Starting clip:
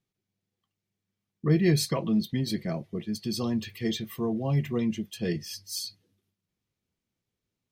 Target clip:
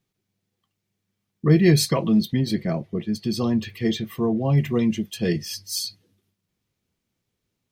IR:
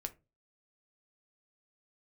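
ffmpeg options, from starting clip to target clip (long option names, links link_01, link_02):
-filter_complex "[0:a]asettb=1/sr,asplit=3[link_01][link_02][link_03];[link_01]atrim=end=2.334[link_04];[link_02]atrim=start=2.33:end=4.58,asetpts=PTS-STARTPTS,afade=type=in:duration=0.004:curve=qsin,afade=type=out:start_time=2.246:duration=0.004:curve=qsin,highshelf=frequency=3900:gain=-7.5[link_05];[link_03]atrim=start=4.576[link_06];[link_04][link_05]acrossfade=duration=0.004:curve1=hsin:curve2=qsin[link_07];[link_07][link_06]acrossfade=duration=0.004:curve1=qsin:curve2=hsin,volume=6.5dB"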